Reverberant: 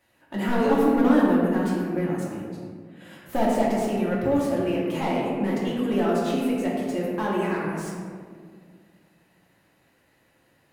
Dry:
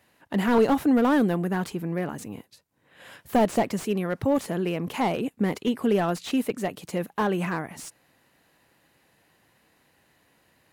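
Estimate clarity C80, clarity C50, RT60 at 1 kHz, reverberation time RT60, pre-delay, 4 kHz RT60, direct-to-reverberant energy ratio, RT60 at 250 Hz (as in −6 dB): 1.0 dB, −0.5 dB, 1.7 s, 2.0 s, 3 ms, 0.95 s, −6.5 dB, 2.6 s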